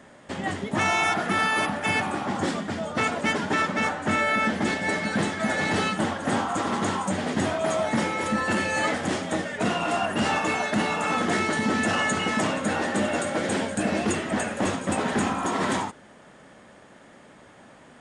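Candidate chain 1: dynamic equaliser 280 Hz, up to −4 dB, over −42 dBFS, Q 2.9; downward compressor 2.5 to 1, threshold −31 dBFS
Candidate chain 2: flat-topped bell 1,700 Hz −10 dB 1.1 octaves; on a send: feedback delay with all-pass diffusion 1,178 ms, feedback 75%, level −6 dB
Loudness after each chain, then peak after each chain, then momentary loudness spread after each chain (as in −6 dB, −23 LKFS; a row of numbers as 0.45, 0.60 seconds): −31.5, −25.5 LKFS; −18.0, −10.5 dBFS; 14, 5 LU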